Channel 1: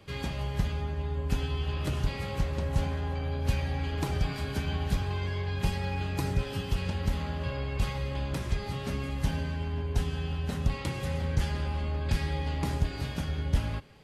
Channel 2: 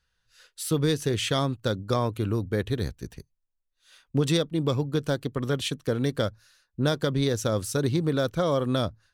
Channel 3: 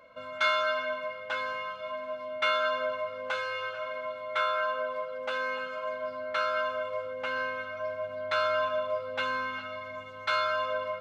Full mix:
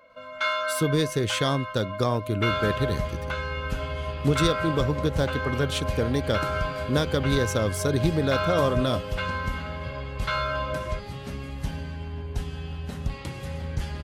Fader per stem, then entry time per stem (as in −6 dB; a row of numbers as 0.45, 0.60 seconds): −2.0, +0.5, 0.0 decibels; 2.40, 0.10, 0.00 seconds